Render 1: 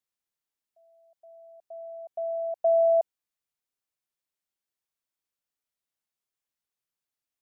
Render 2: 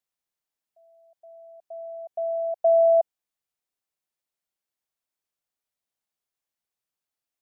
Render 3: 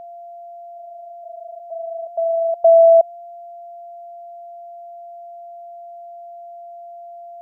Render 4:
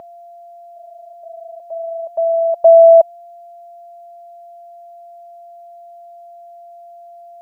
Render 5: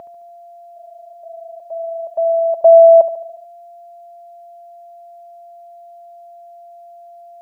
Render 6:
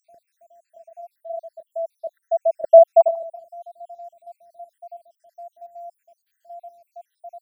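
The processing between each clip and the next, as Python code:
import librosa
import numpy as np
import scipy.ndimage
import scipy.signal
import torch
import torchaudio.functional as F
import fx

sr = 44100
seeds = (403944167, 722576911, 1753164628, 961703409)

y1 = fx.peak_eq(x, sr, hz=700.0, db=3.5, octaves=0.77)
y2 = y1 + 10.0 ** (-42.0 / 20.0) * np.sin(2.0 * np.pi * 690.0 * np.arange(len(y1)) / sr)
y2 = F.gain(torch.from_numpy(y2), 8.0).numpy()
y3 = fx.notch_comb(y2, sr, f0_hz=710.0)
y3 = F.gain(torch.from_numpy(y3), 9.0).numpy()
y4 = fx.echo_feedback(y3, sr, ms=72, feedback_pct=55, wet_db=-13.5)
y5 = fx.spec_dropout(y4, sr, seeds[0], share_pct=77)
y5 = F.gain(torch.from_numpy(y5), 5.0).numpy()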